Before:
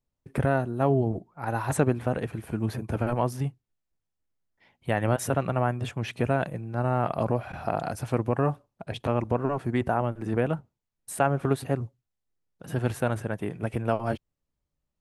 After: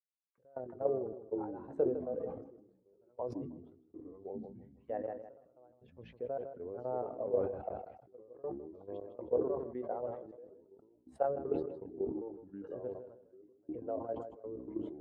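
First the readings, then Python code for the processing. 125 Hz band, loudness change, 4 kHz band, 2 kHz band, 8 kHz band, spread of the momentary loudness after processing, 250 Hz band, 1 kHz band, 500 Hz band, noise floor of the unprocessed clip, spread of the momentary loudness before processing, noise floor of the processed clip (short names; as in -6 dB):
-25.5 dB, -11.0 dB, under -25 dB, under -25 dB, under -35 dB, 19 LU, -13.0 dB, -15.5 dB, -7.5 dB, -83 dBFS, 8 LU, -71 dBFS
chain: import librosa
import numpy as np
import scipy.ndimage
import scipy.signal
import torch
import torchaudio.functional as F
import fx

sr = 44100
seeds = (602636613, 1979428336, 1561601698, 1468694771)

y = fx.bin_expand(x, sr, power=1.5)
y = fx.peak_eq(y, sr, hz=2400.0, db=-6.0, octaves=0.24)
y = fx.auto_wah(y, sr, base_hz=480.0, top_hz=1400.0, q=4.8, full_db=-32.5, direction='down')
y = scipy.signal.sosfilt(scipy.signal.butter(2, 5300.0, 'lowpass', fs=sr, output='sos'), y)
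y = fx.doubler(y, sr, ms=16.0, db=-9.5)
y = fx.level_steps(y, sr, step_db=10)
y = fx.dynamic_eq(y, sr, hz=680.0, q=0.79, threshold_db=-47.0, ratio=4.0, max_db=4)
y = fx.echo_pitch(y, sr, ms=252, semitones=-4, count=3, db_per_echo=-6.0)
y = fx.step_gate(y, sr, bpm=80, pattern='...xxx.xxxxxx.', floor_db=-24.0, edge_ms=4.5)
y = fx.echo_feedback(y, sr, ms=157, feedback_pct=26, wet_db=-15.0)
y = fx.sustainer(y, sr, db_per_s=69.0)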